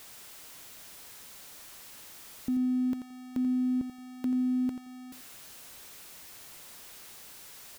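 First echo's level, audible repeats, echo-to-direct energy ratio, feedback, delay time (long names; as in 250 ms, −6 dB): −10.0 dB, 2, −10.0 dB, 19%, 86 ms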